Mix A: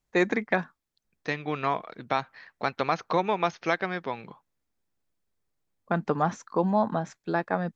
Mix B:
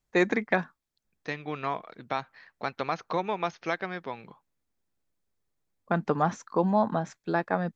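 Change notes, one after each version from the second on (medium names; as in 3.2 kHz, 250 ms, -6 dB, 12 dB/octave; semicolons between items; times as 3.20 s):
second voice -4.0 dB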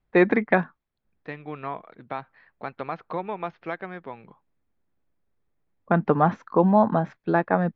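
first voice +7.0 dB; master: add distance through air 390 m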